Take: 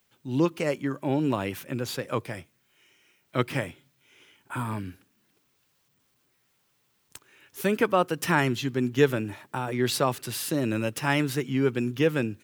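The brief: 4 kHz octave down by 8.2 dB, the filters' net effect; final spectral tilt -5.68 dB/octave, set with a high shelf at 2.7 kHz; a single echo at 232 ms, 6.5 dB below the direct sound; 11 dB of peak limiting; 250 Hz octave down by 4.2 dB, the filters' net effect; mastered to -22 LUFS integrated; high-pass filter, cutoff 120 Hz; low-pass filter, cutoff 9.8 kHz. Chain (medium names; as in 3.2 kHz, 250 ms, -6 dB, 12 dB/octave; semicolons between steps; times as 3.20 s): high-pass 120 Hz; low-pass 9.8 kHz; peaking EQ 250 Hz -5 dB; treble shelf 2.7 kHz -7 dB; peaking EQ 4 kHz -5 dB; peak limiter -20.5 dBFS; delay 232 ms -6.5 dB; trim +11 dB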